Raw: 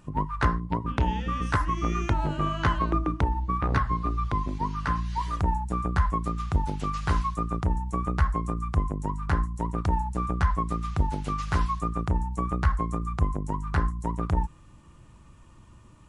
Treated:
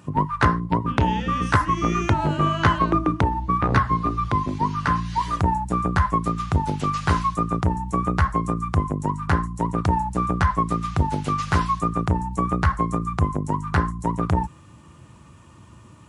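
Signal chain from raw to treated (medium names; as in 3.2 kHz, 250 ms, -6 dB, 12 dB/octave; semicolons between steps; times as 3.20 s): high-pass 76 Hz 24 dB/octave; trim +7 dB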